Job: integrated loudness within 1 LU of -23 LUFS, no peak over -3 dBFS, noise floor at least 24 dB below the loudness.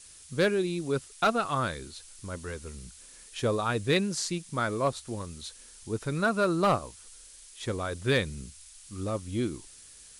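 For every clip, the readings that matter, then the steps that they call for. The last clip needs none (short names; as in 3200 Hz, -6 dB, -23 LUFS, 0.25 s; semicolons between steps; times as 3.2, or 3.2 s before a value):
clipped 0.2%; flat tops at -17.0 dBFS; noise floor -52 dBFS; noise floor target -54 dBFS; loudness -30.0 LUFS; peak -17.0 dBFS; loudness target -23.0 LUFS
-> clip repair -17 dBFS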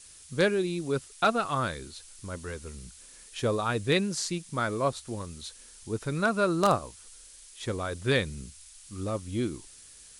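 clipped 0.0%; noise floor -52 dBFS; noise floor target -54 dBFS
-> noise print and reduce 6 dB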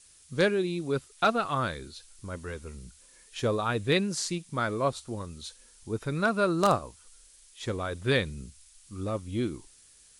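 noise floor -57 dBFS; loudness -29.5 LUFS; peak -8.0 dBFS; loudness target -23.0 LUFS
-> gain +6.5 dB; limiter -3 dBFS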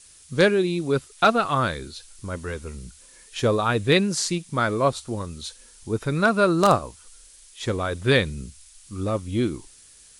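loudness -23.0 LUFS; peak -3.0 dBFS; noise floor -51 dBFS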